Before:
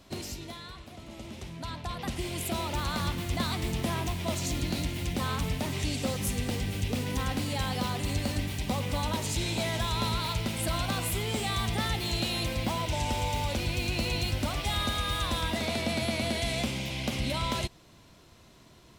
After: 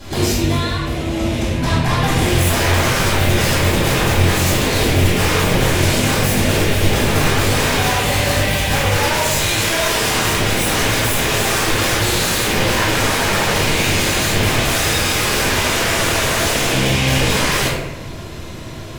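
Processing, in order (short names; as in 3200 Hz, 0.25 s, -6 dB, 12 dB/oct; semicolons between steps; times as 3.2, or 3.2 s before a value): 7.78–9.97 resonant low shelf 440 Hz -8.5 dB, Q 1.5; sine folder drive 16 dB, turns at -17.5 dBFS; reverb RT60 1.1 s, pre-delay 3 ms, DRR -10.5 dB; gain -9.5 dB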